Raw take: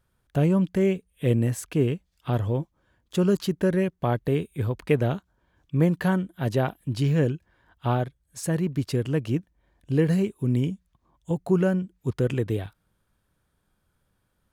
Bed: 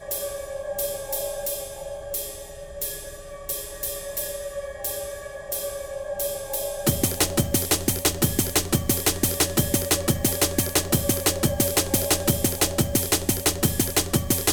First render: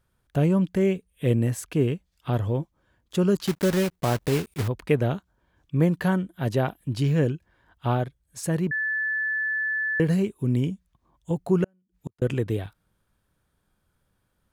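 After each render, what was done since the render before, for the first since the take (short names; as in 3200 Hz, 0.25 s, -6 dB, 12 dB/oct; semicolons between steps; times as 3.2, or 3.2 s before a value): 3.47–4.69 block floating point 3-bit; 8.71–10 bleep 1740 Hz -23.5 dBFS; 11.64–12.22 flipped gate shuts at -22 dBFS, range -41 dB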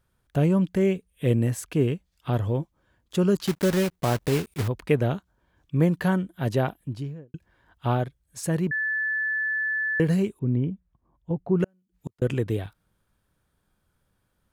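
6.61–7.34 studio fade out; 10.39–11.6 tape spacing loss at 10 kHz 45 dB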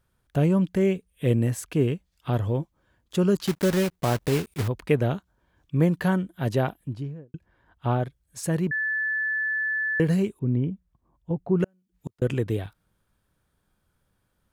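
6.94–8.03 high shelf 2900 Hz -8 dB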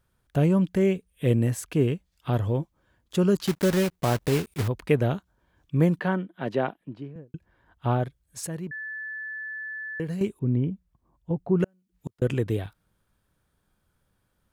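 5.99–7.16 three-band isolator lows -22 dB, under 170 Hz, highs -20 dB, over 3800 Hz; 8.47–10.21 gain -9 dB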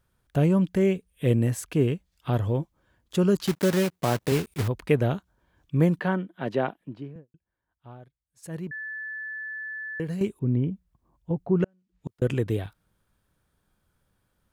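3.55–4.32 HPF 110 Hz; 7.14–8.55 dip -21 dB, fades 0.13 s; 11.46–12.08 air absorption 77 m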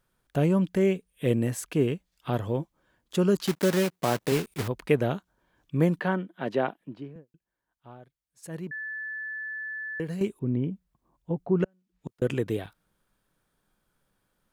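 bell 74 Hz -13 dB 1.2 oct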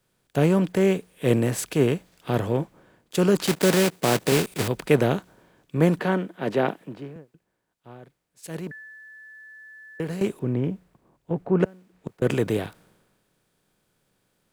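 per-bin compression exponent 0.6; three-band expander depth 70%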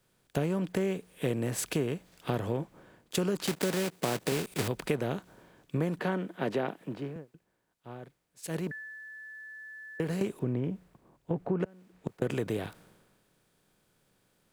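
compressor, threshold -27 dBFS, peak gain reduction 14 dB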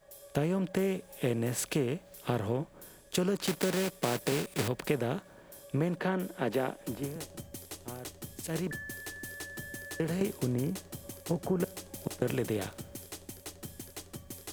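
add bed -22.5 dB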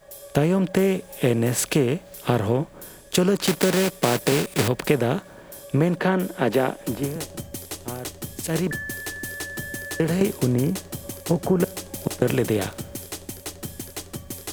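gain +10 dB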